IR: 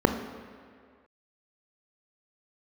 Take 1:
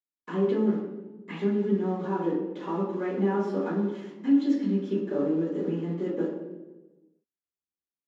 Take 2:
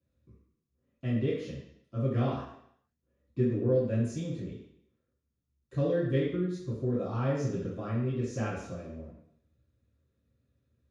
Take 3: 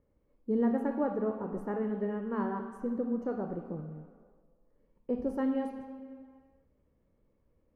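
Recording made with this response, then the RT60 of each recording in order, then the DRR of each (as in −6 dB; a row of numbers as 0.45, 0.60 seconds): 3; 1.2, 0.70, 2.0 seconds; −14.5, −10.5, 6.0 decibels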